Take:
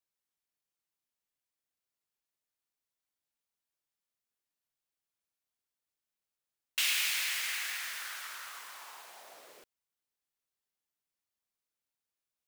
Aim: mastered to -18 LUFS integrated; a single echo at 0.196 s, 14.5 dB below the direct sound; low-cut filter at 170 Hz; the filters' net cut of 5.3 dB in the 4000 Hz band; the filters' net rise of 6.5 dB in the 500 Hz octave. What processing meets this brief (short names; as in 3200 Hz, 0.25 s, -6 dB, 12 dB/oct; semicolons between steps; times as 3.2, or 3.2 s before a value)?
HPF 170 Hz; bell 500 Hz +8.5 dB; bell 4000 Hz -7.5 dB; echo 0.196 s -14.5 dB; gain +16.5 dB